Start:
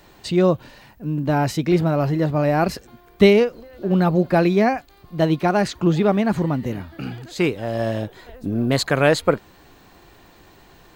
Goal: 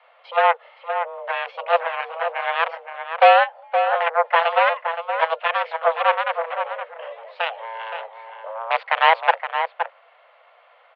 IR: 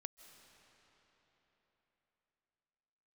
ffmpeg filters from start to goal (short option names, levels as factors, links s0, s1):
-filter_complex "[0:a]aeval=exprs='0.708*(cos(1*acos(clip(val(0)/0.708,-1,1)))-cos(1*PI/2))+0.0708*(cos(5*acos(clip(val(0)/0.708,-1,1)))-cos(5*PI/2))+0.224*(cos(7*acos(clip(val(0)/0.708,-1,1)))-cos(7*PI/2))':c=same,highpass=f=180:t=q:w=0.5412,highpass=f=180:t=q:w=1.307,lowpass=f=2900:t=q:w=0.5176,lowpass=f=2900:t=q:w=0.7071,lowpass=f=2900:t=q:w=1.932,afreqshift=330,asplit=2[s0][s1];[s1]adelay=519,volume=0.447,highshelf=f=4000:g=-11.7[s2];[s0][s2]amix=inputs=2:normalize=0"